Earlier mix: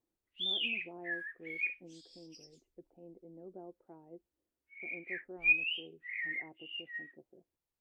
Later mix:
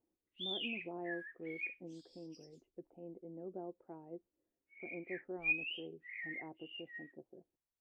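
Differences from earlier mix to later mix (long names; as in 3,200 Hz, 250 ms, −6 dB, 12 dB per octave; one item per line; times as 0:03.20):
speech +3.5 dB
background −7.0 dB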